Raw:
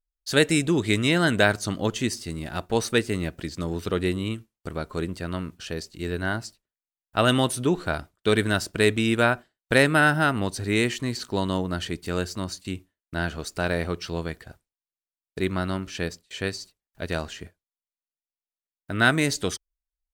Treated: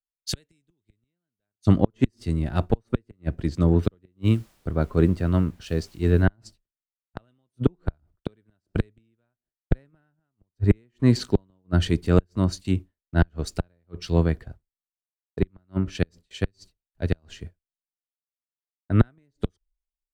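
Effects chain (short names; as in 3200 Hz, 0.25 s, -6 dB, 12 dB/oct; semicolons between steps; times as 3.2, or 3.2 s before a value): 3.78–6.24 added noise white -53 dBFS; flipped gate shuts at -15 dBFS, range -41 dB; tilt -3 dB/oct; three-band expander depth 100%; gain +1.5 dB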